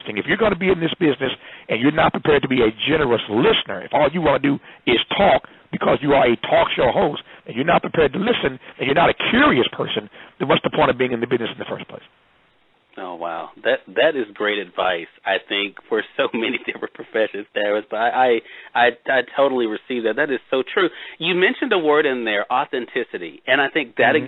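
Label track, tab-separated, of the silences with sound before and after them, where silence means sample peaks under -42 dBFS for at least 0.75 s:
12.060000	12.930000	silence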